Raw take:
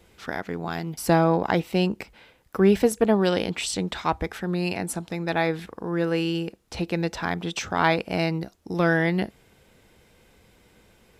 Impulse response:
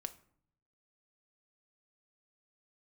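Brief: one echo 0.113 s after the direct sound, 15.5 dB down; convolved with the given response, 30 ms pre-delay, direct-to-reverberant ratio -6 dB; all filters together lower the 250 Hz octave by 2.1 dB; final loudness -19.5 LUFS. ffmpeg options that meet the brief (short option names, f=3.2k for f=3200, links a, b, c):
-filter_complex "[0:a]equalizer=f=250:t=o:g=-3.5,aecho=1:1:113:0.168,asplit=2[a][b];[1:a]atrim=start_sample=2205,adelay=30[c];[b][c]afir=irnorm=-1:irlink=0,volume=8.5dB[d];[a][d]amix=inputs=2:normalize=0,volume=-1dB"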